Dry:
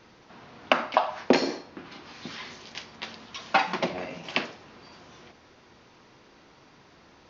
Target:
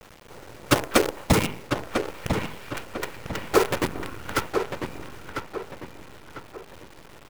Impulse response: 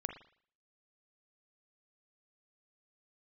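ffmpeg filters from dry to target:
-filter_complex "[0:a]bandreject=f=50:t=h:w=6,bandreject=f=100:t=h:w=6,bandreject=f=150:t=h:w=6,bandreject=f=200:t=h:w=6,bandreject=f=250:t=h:w=6,aecho=1:1:1.1:0.35,asplit=2[s0][s1];[s1]acompressor=threshold=0.01:ratio=12,volume=1[s2];[s0][s2]amix=inputs=2:normalize=0,aeval=exprs='(mod(2.11*val(0)+1,2)-1)/2.11':c=same,afftfilt=real='hypot(re,im)*cos(2*PI*random(0))':imag='hypot(re,im)*sin(2*PI*random(1))':win_size=512:overlap=0.75,asetrate=22696,aresample=44100,atempo=1.94306,acrusher=bits=6:dc=4:mix=0:aa=0.000001,asplit=2[s3][s4];[s4]adelay=998,lowpass=f=3200:p=1,volume=0.501,asplit=2[s5][s6];[s6]adelay=998,lowpass=f=3200:p=1,volume=0.4,asplit=2[s7][s8];[s8]adelay=998,lowpass=f=3200:p=1,volume=0.4,asplit=2[s9][s10];[s10]adelay=998,lowpass=f=3200:p=1,volume=0.4,asplit=2[s11][s12];[s12]adelay=998,lowpass=f=3200:p=1,volume=0.4[s13];[s5][s7][s9][s11][s13]amix=inputs=5:normalize=0[s14];[s3][s14]amix=inputs=2:normalize=0,volume=2.51"

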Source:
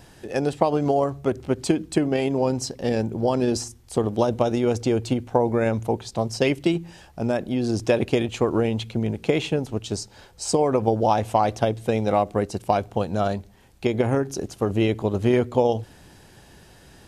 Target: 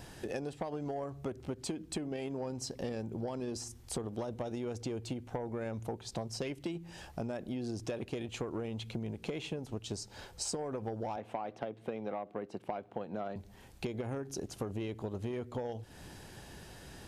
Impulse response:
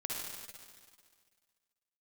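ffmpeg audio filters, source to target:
-filter_complex "[0:a]asoftclip=type=tanh:threshold=0.251,asettb=1/sr,asplit=3[s0][s1][s2];[s0]atrim=end=11.164[s3];[s1]atrim=start=11.16:end=13.36,asetpts=PTS-STARTPTS,afade=t=in:d=0.004:c=qsin,afade=t=out:st=2.196:d=0.004:c=qsin,acrossover=split=150 3300:gain=0.0631 1 0.126[s4][s5][s6];[s4][s5][s6]amix=inputs=3:normalize=0[s7];[s2]atrim=start=13.356[s8];[s3][s7]acrossfade=d=0.004:c1=hsin:c2=qsin[s9];[s9][s8]acrossfade=d=0.004:c1=qsin:c2=hsin,acompressor=threshold=0.02:ratio=12,volume=0.891"

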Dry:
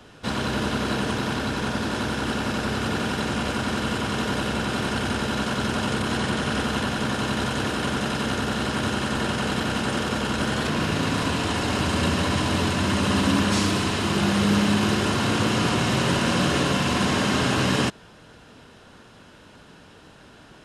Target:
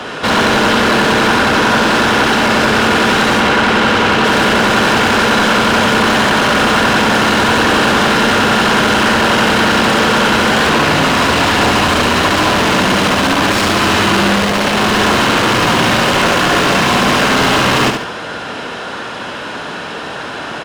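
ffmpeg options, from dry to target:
-filter_complex "[0:a]volume=23.7,asoftclip=hard,volume=0.0422,asettb=1/sr,asplit=3[s0][s1][s2];[s0]atrim=end=3.404[s3];[s1]atrim=start=3.4:end=4.25,asetpts=PTS-STARTPTS,afade=t=in:d=0.004:c=qsin,afade=t=out:st=0.846:d=0.004:c=qsin,lowpass=4600[s4];[s2]atrim=start=4.246[s5];[s3][s4]acrossfade=d=0.004:c1=hsin:c2=qsin[s6];[s6][s5]acrossfade=d=0.004:c1=qsin:c2=hsin,asplit=2[s7][s8];[s8]highpass=f=720:p=1,volume=22.4,asoftclip=type=tanh:threshold=0.282[s9];[s7][s9]amix=inputs=2:normalize=0,lowpass=f=2300:p=1,volume=0.501,asplit=2[s10][s11];[s11]aecho=0:1:71|142|213|284:0.501|0.165|0.0546|0.018[s12];[s10][s12]amix=inputs=2:normalize=0,volume=2.51"

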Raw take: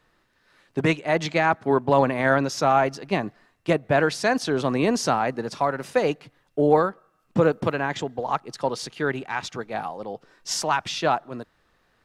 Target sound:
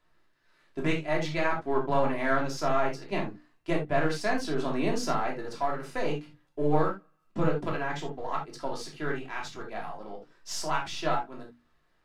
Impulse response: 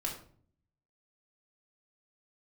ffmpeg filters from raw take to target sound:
-filter_complex "[0:a]aeval=exprs='if(lt(val(0),0),0.708*val(0),val(0))':c=same,bandreject=f=60:t=h:w=6,bandreject=f=120:t=h:w=6,bandreject=f=180:t=h:w=6,bandreject=f=240:t=h:w=6,bandreject=f=300:t=h:w=6[s0];[1:a]atrim=start_sample=2205,atrim=end_sample=3969[s1];[s0][s1]afir=irnorm=-1:irlink=0,volume=0.422"

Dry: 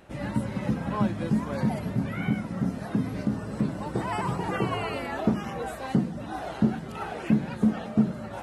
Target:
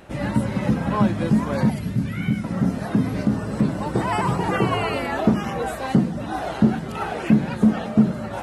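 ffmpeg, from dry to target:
-filter_complex "[0:a]asettb=1/sr,asplit=3[s0][s1][s2];[s0]atrim=end=1.704[s3];[s1]atrim=start=1.7:end=2.44,asetpts=PTS-STARTPTS,afade=t=in:d=0.004:c=qsin,afade=t=out:st=0.736:d=0.004:c=qsin,equalizer=f=740:w=0.61:g=-12.5[s4];[s2]atrim=start=2.436[s5];[s3][s4]acrossfade=d=0.004:c1=hsin:c2=qsin[s6];[s6][s5]acrossfade=d=0.004:c1=qsin:c2=hsin,asplit=2[s7][s8];[s8]asoftclip=type=hard:threshold=0.0708,volume=0.282[s9];[s7][s9]amix=inputs=2:normalize=0,volume=1.78"

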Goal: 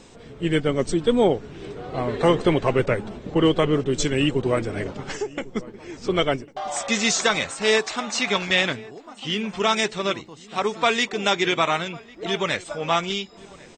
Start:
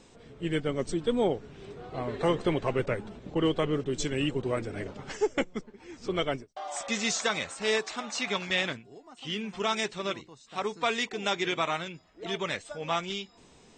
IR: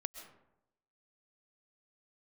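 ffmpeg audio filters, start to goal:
-filter_complex "[0:a]asplit=3[s0][s1][s2];[s0]afade=t=out:st=5.03:d=0.02[s3];[s1]acompressor=threshold=0.02:ratio=6,afade=t=in:st=5.03:d=0.02,afade=t=out:st=5.43:d=0.02[s4];[s2]afade=t=in:st=5.43:d=0.02[s5];[s3][s4][s5]amix=inputs=3:normalize=0,asplit=2[s6][s7];[s7]adelay=1099,lowpass=f=1800:p=1,volume=0.0891,asplit=2[s8][s9];[s9]adelay=1099,lowpass=f=1800:p=1,volume=0.44,asplit=2[s10][s11];[s11]adelay=1099,lowpass=f=1800:p=1,volume=0.44[s12];[s8][s10][s12]amix=inputs=3:normalize=0[s13];[s6][s13]amix=inputs=2:normalize=0,volume=2.51"

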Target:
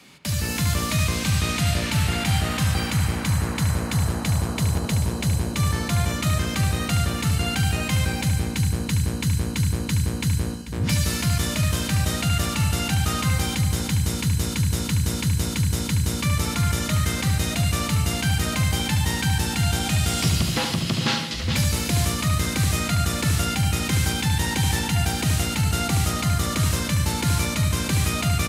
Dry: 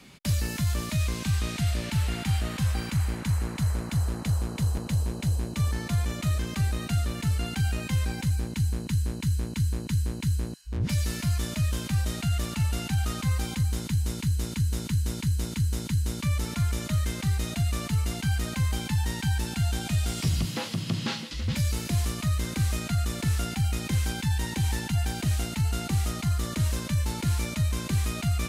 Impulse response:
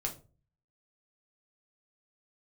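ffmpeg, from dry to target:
-filter_complex "[0:a]highpass=65,lowshelf=f=420:g=-6,asplit=2[s0][s1];[s1]adelay=73,lowpass=f=2000:p=1,volume=0.562,asplit=2[s2][s3];[s3]adelay=73,lowpass=f=2000:p=1,volume=0.41,asplit=2[s4][s5];[s5]adelay=73,lowpass=f=2000:p=1,volume=0.41,asplit=2[s6][s7];[s7]adelay=73,lowpass=f=2000:p=1,volume=0.41,asplit=2[s8][s9];[s9]adelay=73,lowpass=f=2000:p=1,volume=0.41[s10];[s2][s4][s6][s8][s10]amix=inputs=5:normalize=0[s11];[s0][s11]amix=inputs=2:normalize=0,dynaudnorm=f=170:g=5:m=1.88,asplit=2[s12][s13];[s13]aecho=0:1:440:0.2[s14];[s12][s14]amix=inputs=2:normalize=0,volume=1.5"

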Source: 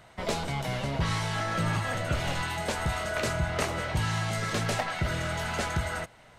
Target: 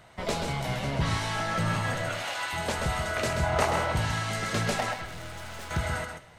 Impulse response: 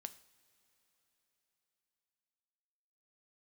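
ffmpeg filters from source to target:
-filter_complex "[0:a]asettb=1/sr,asplit=3[s0][s1][s2];[s0]atrim=end=2.094[s3];[s1]atrim=start=2.09:end=2.53,asetpts=PTS-STARTPTS,afade=t=in:d=0.004:c=qsin,afade=t=out:st=0.436:d=0.004:c=qsin,highpass=630[s4];[s2]atrim=start=2.526[s5];[s3][s4]acrossfade=d=0.004:c1=hsin:c2=qsin[s6];[s6][s5]acrossfade=d=0.004:c1=qsin:c2=hsin,asettb=1/sr,asplit=3[s7][s8][s9];[s7]atrim=end=3.434[s10];[s8]atrim=start=3.43:end=3.92,asetpts=PTS-STARTPTS,afade=t=in:d=0.004:c=qsin,afade=t=out:st=0.486:d=0.004:c=qsin,equalizer=f=850:t=o:w=0.98:g=9[s11];[s9]atrim=start=3.916[s12];[s10][s11]acrossfade=d=0.004:c1=hsin:c2=qsin[s13];[s13][s12]acrossfade=d=0.004:c1=qsin:c2=hsin,asettb=1/sr,asplit=3[s14][s15][s16];[s14]atrim=end=4.924[s17];[s15]atrim=start=4.92:end=5.71,asetpts=PTS-STARTPTS,afade=t=in:d=0.004:c=qsin,afade=t=out:st=0.786:d=0.004:c=qsin,aeval=exprs='(tanh(100*val(0)+0.6)-tanh(0.6))/100':c=same[s18];[s16]atrim=start=5.706[s19];[s17][s18]acrossfade=d=0.004:c1=hsin:c2=qsin[s20];[s20][s19]acrossfade=d=0.004:c1=qsin:c2=hsin,asplit=2[s21][s22];[1:a]atrim=start_sample=2205,adelay=131[s23];[s22][s23]afir=irnorm=-1:irlink=0,volume=0.891[s24];[s21][s24]amix=inputs=2:normalize=0"

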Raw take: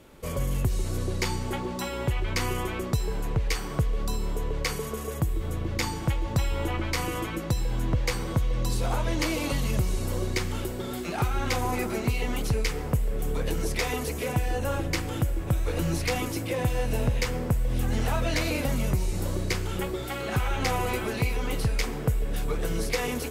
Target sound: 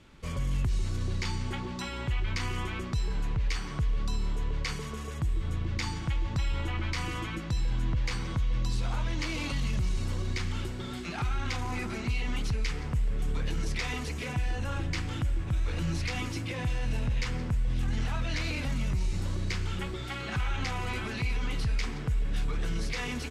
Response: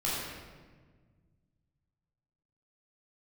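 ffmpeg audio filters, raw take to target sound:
-filter_complex "[0:a]lowpass=5600,asplit=2[s0][s1];[s1]aecho=0:1:171:0.0841[s2];[s0][s2]amix=inputs=2:normalize=0,alimiter=limit=0.0891:level=0:latency=1:release=13,equalizer=f=520:t=o:w=1.6:g=-11"

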